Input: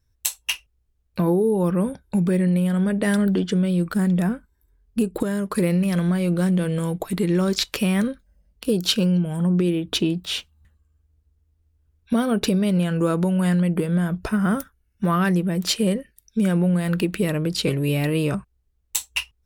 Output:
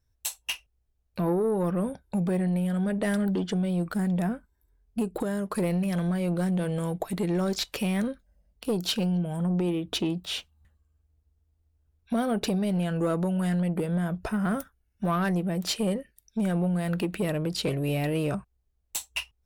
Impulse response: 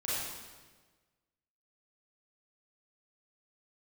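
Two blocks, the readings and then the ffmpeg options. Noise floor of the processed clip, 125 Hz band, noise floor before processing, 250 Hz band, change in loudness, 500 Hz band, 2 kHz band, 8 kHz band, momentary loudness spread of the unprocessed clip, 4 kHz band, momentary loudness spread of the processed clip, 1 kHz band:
-72 dBFS, -6.5 dB, -67 dBFS, -6.5 dB, -6.0 dB, -5.0 dB, -6.5 dB, -7.0 dB, 8 LU, -6.5 dB, 8 LU, -3.5 dB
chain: -af "asoftclip=type=tanh:threshold=0.178,equalizer=f=700:t=o:w=0.73:g=6,volume=0.562"

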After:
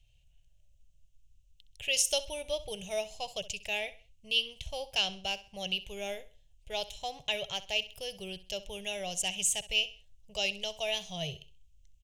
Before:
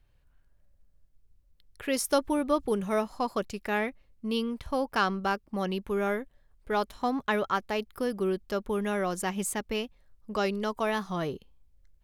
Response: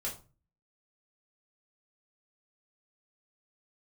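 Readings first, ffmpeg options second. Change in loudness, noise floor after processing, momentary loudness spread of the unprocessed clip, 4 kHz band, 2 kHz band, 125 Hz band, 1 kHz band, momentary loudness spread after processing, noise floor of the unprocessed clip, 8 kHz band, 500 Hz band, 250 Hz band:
-2.5 dB, -64 dBFS, 7 LU, +9.0 dB, -2.0 dB, -9.0 dB, -12.0 dB, 11 LU, -65 dBFS, +6.0 dB, -8.0 dB, -18.0 dB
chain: -filter_complex "[0:a]firequalizer=gain_entry='entry(150,0);entry(240,-30);entry(390,-16);entry(650,-3);entry(1200,-28);entry(2800,12);entry(4500,0);entry(6400,11);entry(11000,-3)':delay=0.05:min_phase=1,asplit=2[s0][s1];[s1]aecho=0:1:65|130|195:0.15|0.0494|0.0163[s2];[s0][s2]amix=inputs=2:normalize=0"

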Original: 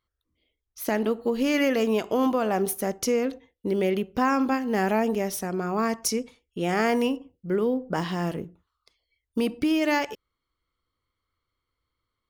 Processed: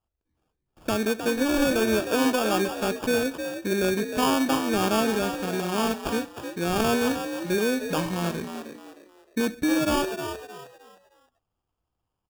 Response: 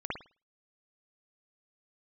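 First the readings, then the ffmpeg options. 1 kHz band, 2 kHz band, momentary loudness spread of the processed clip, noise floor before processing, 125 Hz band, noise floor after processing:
0.0 dB, +2.0 dB, 11 LU, -83 dBFS, +1.0 dB, -82 dBFS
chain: -filter_complex "[0:a]adynamicsmooth=sensitivity=3.5:basefreq=3400,acrusher=samples=22:mix=1:aa=0.000001,asplit=5[s0][s1][s2][s3][s4];[s1]adelay=310,afreqshift=61,volume=0.376[s5];[s2]adelay=620,afreqshift=122,volume=0.12[s6];[s3]adelay=930,afreqshift=183,volume=0.0385[s7];[s4]adelay=1240,afreqshift=244,volume=0.0123[s8];[s0][s5][s6][s7][s8]amix=inputs=5:normalize=0"

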